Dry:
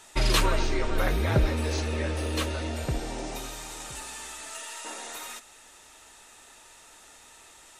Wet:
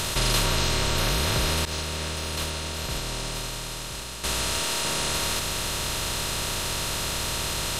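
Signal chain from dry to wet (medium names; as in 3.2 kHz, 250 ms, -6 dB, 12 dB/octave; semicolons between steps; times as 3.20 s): spectral levelling over time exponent 0.2; 1.65–4.24 s: expander -12 dBFS; treble shelf 3.1 kHz +9.5 dB; trim -8.5 dB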